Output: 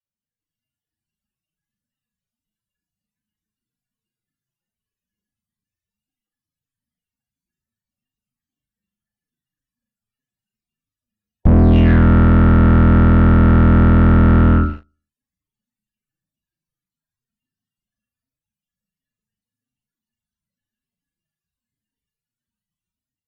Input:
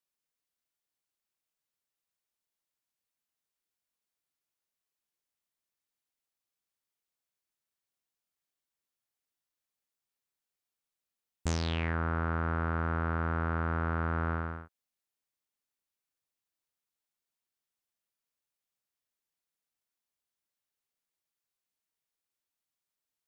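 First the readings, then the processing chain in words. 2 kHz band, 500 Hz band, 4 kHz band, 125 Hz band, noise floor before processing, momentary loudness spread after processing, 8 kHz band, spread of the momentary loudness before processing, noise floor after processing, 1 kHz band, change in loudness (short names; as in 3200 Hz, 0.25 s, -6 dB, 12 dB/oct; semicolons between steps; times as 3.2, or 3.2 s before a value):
+10.0 dB, +17.0 dB, n/a, +21.5 dB, under -85 dBFS, 3 LU, under -10 dB, 4 LU, under -85 dBFS, +12.0 dB, +20.5 dB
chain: octaver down 1 oct, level +2 dB; loudest bins only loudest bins 32; limiter -27 dBFS, peak gain reduction 7 dB; small resonant body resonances 230/1700/2800 Hz, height 15 dB, ringing for 35 ms; on a send: flutter echo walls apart 6.5 m, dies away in 0.46 s; on the sum: AGC gain up to 8.5 dB; sample leveller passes 3; low shelf 97 Hz +10 dB; treble ducked by the level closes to 2300 Hz, closed at -14 dBFS; gain +3 dB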